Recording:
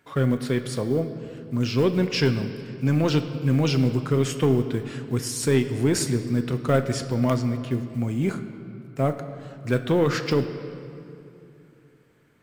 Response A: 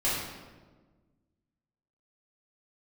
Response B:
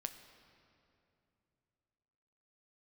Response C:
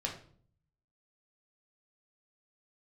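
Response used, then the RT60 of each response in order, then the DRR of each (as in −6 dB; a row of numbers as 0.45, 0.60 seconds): B; 1.4, 2.8, 0.50 seconds; −10.5, 7.5, −1.0 decibels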